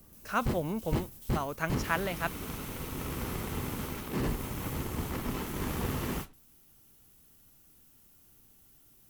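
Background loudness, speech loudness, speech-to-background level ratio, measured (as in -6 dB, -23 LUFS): -36.0 LUFS, -34.5 LUFS, 1.5 dB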